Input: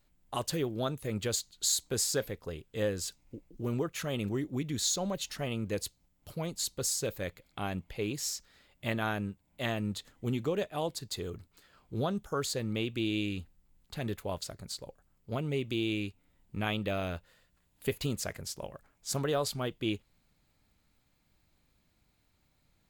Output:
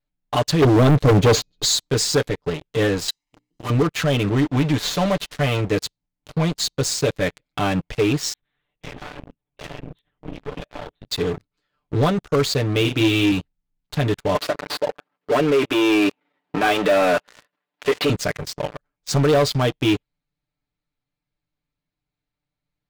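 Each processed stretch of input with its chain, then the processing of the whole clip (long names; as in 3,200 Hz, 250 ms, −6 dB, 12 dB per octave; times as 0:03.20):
0:00.62–0:01.65: low shelf with overshoot 750 Hz +12.5 dB, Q 1.5 + bad sample-rate conversion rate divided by 3×, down none, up filtered
0:03.08–0:03.70: spectral tilt +3.5 dB per octave + mains-hum notches 60/120/180/240/300/360/420/480/540 Hz + comb filter 1 ms
0:04.36–0:05.59: spectral envelope flattened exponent 0.6 + low-pass filter 2,700 Hz 6 dB per octave
0:08.33–0:11.08: downward compressor 4 to 1, threshold −45 dBFS + linear-prediction vocoder at 8 kHz whisper
0:12.81–0:13.32: high-pass filter 58 Hz + double-tracking delay 36 ms −6 dB + log-companded quantiser 8 bits
0:14.35–0:18.10: output level in coarse steps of 14 dB + mid-hump overdrive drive 32 dB, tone 1,400 Hz, clips at −19.5 dBFS + band-pass filter 270–5,800 Hz
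whole clip: low-pass filter 4,800 Hz 12 dB per octave; comb filter 6.8 ms, depth 87%; leveller curve on the samples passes 5; level −5 dB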